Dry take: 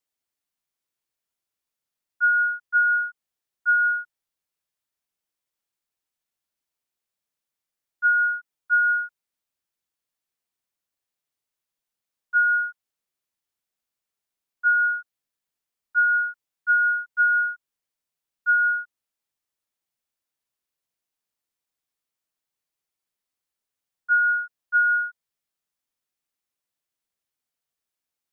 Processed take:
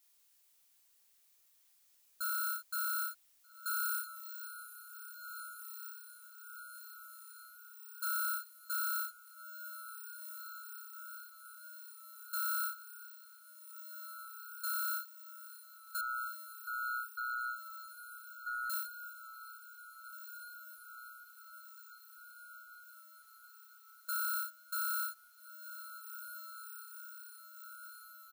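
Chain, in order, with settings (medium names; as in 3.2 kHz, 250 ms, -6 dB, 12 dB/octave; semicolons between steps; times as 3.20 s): bit-reversed sample order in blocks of 16 samples; 15.98–18.70 s: Bessel low-pass 1.3 kHz, order 2; compression, threshold -30 dBFS, peak gain reduction 12.5 dB; peak limiter -30 dBFS, peak gain reduction 6.5 dB; added noise blue -68 dBFS; doubling 28 ms -3.5 dB; echo that smears into a reverb 1674 ms, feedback 67%, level -10 dB; trim -3 dB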